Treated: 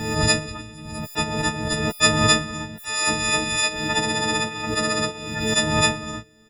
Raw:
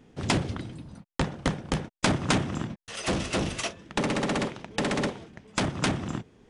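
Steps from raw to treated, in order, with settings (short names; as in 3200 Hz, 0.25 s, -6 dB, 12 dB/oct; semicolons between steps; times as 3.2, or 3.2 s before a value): frequency quantiser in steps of 6 st; harmoniser -12 st -7 dB, -4 st -14 dB; backwards sustainer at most 45 dB/s; gain -2 dB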